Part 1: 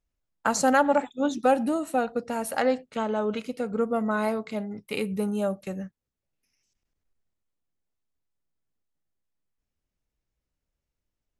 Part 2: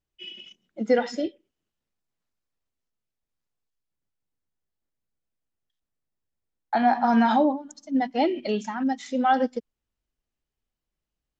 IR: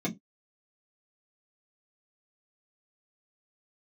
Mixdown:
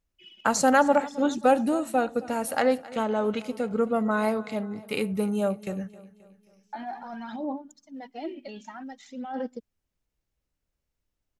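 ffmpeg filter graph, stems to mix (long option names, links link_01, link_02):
-filter_complex "[0:a]volume=1dB,asplit=3[link_01][link_02][link_03];[link_02]volume=-19.5dB[link_04];[1:a]alimiter=limit=-19.5dB:level=0:latency=1:release=17,aphaser=in_gain=1:out_gain=1:delay=3.6:decay=0.59:speed=0.53:type=sinusoidal,volume=-11.5dB[link_05];[link_03]apad=whole_len=502604[link_06];[link_05][link_06]sidechaincompress=threshold=-25dB:ratio=8:attack=16:release=271[link_07];[link_04]aecho=0:1:266|532|798|1064|1330|1596|1862:1|0.48|0.23|0.111|0.0531|0.0255|0.0122[link_08];[link_01][link_07][link_08]amix=inputs=3:normalize=0"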